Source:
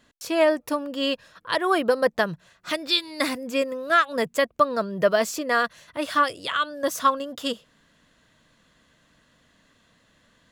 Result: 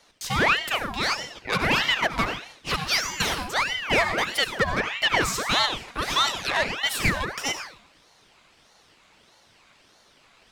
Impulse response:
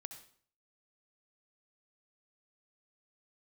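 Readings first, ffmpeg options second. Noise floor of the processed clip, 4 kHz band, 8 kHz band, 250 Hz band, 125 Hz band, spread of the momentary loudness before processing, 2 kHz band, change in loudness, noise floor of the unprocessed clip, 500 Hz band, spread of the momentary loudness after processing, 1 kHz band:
-59 dBFS, +4.5 dB, +5.5 dB, -4.5 dB, +10.0 dB, 9 LU, +4.0 dB, 0.0 dB, -63 dBFS, -7.5 dB, 8 LU, -2.0 dB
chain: -filter_complex "[0:a]asplit=2[a][b];[b]highpass=f=720:p=1,volume=19dB,asoftclip=type=tanh:threshold=-6.5dB[c];[a][c]amix=inputs=2:normalize=0,lowpass=f=7.2k:p=1,volume=-6dB[d];[1:a]atrim=start_sample=2205,asetrate=40572,aresample=44100[e];[d][e]afir=irnorm=-1:irlink=0,aeval=exprs='val(0)*sin(2*PI*1500*n/s+1500*0.7/1.6*sin(2*PI*1.6*n/s))':c=same"

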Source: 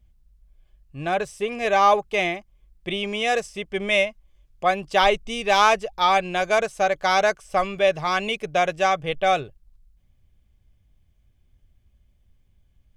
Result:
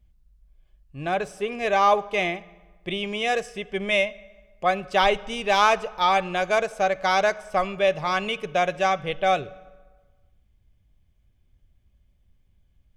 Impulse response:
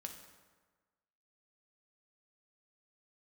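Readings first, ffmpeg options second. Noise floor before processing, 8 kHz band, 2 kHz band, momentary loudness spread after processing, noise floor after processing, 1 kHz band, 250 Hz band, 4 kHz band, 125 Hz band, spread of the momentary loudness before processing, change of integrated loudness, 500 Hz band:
-62 dBFS, -3.5 dB, -1.5 dB, 10 LU, -63 dBFS, -1.5 dB, -1.0 dB, -2.0 dB, -0.5 dB, 10 LU, -1.5 dB, -1.5 dB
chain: -filter_complex "[0:a]asplit=2[a][b];[1:a]atrim=start_sample=2205,lowpass=5.7k[c];[b][c]afir=irnorm=-1:irlink=0,volume=-6.5dB[d];[a][d]amix=inputs=2:normalize=0,volume=-3.5dB"

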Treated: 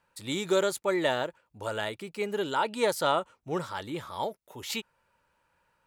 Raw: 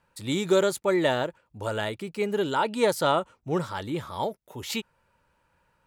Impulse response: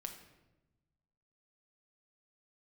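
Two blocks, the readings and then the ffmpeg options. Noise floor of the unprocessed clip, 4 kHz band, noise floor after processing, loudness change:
-71 dBFS, -1.5 dB, -75 dBFS, -3.5 dB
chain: -af "lowshelf=f=330:g=-7,volume=-1.5dB"

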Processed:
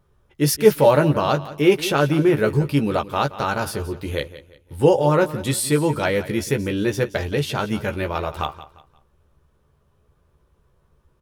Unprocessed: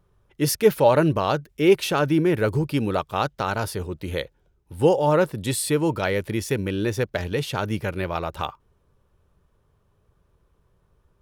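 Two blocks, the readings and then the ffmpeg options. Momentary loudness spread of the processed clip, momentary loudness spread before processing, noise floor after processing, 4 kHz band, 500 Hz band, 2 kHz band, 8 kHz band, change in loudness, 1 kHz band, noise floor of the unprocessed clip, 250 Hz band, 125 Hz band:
11 LU, 11 LU, -63 dBFS, +2.5 dB, +2.5 dB, +3.0 dB, +3.0 dB, +2.5 dB, +2.0 dB, -66 dBFS, +2.5 dB, +3.0 dB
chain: -filter_complex "[0:a]asplit=2[a][b];[b]adelay=14,volume=-5.5dB[c];[a][c]amix=inputs=2:normalize=0,asplit=2[d][e];[e]aecho=0:1:175|350|525:0.168|0.0554|0.0183[f];[d][f]amix=inputs=2:normalize=0,volume=1.5dB"

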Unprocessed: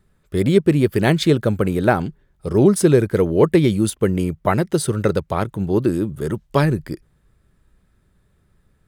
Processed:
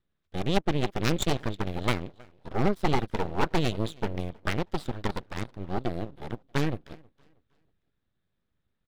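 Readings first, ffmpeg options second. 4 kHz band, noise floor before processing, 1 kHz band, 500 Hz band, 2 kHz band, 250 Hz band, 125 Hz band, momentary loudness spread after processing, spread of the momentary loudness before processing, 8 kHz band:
-4.5 dB, -62 dBFS, -6.5 dB, -14.5 dB, -7.5 dB, -13.5 dB, -12.0 dB, 11 LU, 9 LU, -12.5 dB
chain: -af "highshelf=f=5.1k:t=q:w=3:g=-12.5,aecho=1:1:318|636|954:0.126|0.0466|0.0172,aeval=exprs='0.944*(cos(1*acos(clip(val(0)/0.944,-1,1)))-cos(1*PI/2))+0.237*(cos(3*acos(clip(val(0)/0.944,-1,1)))-cos(3*PI/2))+0.0944*(cos(8*acos(clip(val(0)/0.944,-1,1)))-cos(8*PI/2))':c=same,aeval=exprs='abs(val(0))':c=same,volume=-6dB"

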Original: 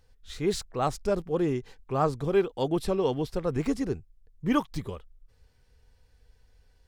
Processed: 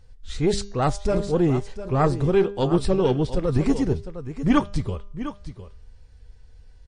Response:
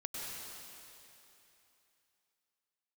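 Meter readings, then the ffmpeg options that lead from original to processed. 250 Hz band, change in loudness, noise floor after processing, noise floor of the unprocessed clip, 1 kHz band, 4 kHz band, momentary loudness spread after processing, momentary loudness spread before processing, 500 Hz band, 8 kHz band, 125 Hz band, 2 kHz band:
+7.0 dB, +5.5 dB, -49 dBFS, -63 dBFS, +4.0 dB, +4.5 dB, 13 LU, 11 LU, +5.0 dB, +4.5 dB, +9.5 dB, +5.0 dB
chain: -filter_complex "[0:a]lowshelf=f=170:g=9.5,bandreject=f=201.2:t=h:w=4,bandreject=f=402.4:t=h:w=4,bandreject=f=603.6:t=h:w=4,bandreject=f=804.8:t=h:w=4,bandreject=f=1.006k:t=h:w=4,bandreject=f=1.2072k:t=h:w=4,bandreject=f=1.4084k:t=h:w=4,bandreject=f=1.6096k:t=h:w=4,bandreject=f=1.8108k:t=h:w=4,bandreject=f=2.012k:t=h:w=4,bandreject=f=2.2132k:t=h:w=4,bandreject=f=2.4144k:t=h:w=4,bandreject=f=2.6156k:t=h:w=4,bandreject=f=2.8168k:t=h:w=4,bandreject=f=3.018k:t=h:w=4,bandreject=f=3.2192k:t=h:w=4,bandreject=f=3.4204k:t=h:w=4,bandreject=f=3.6216k:t=h:w=4,bandreject=f=3.8228k:t=h:w=4,bandreject=f=4.024k:t=h:w=4,bandreject=f=4.2252k:t=h:w=4,bandreject=f=4.4264k:t=h:w=4,bandreject=f=4.6276k:t=h:w=4,bandreject=f=4.8288k:t=h:w=4,bandreject=f=5.03k:t=h:w=4,bandreject=f=5.2312k:t=h:w=4,bandreject=f=5.4324k:t=h:w=4,bandreject=f=5.6336k:t=h:w=4,bandreject=f=5.8348k:t=h:w=4,bandreject=f=6.036k:t=h:w=4,bandreject=f=6.2372k:t=h:w=4,bandreject=f=6.4384k:t=h:w=4,bandreject=f=6.6396k:t=h:w=4,bandreject=f=6.8408k:t=h:w=4,asplit=2[a][b];[b]aecho=0:1:706:0.237[c];[a][c]amix=inputs=2:normalize=0,aeval=exprs='0.282*(cos(1*acos(clip(val(0)/0.282,-1,1)))-cos(1*PI/2))+0.0708*(cos(2*acos(clip(val(0)/0.282,-1,1)))-cos(2*PI/2))':c=same,volume=4.5dB" -ar 22050 -c:a libmp3lame -b:a 40k

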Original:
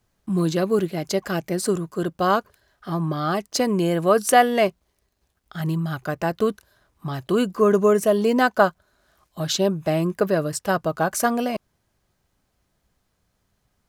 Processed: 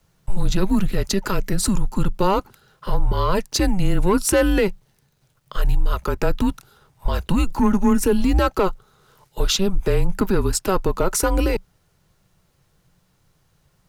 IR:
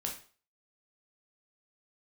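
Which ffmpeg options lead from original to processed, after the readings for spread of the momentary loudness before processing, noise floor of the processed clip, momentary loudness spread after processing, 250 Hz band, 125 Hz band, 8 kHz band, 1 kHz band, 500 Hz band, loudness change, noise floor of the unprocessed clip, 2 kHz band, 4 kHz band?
10 LU, -64 dBFS, 9 LU, +2.5 dB, +3.0 dB, +4.0 dB, -3.0 dB, -2.0 dB, +0.5 dB, -72 dBFS, -2.5 dB, +3.0 dB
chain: -af "equalizer=f=170:t=o:w=0.22:g=10.5,acontrast=87,alimiter=limit=-10.5dB:level=0:latency=1:release=91,afreqshift=-190"

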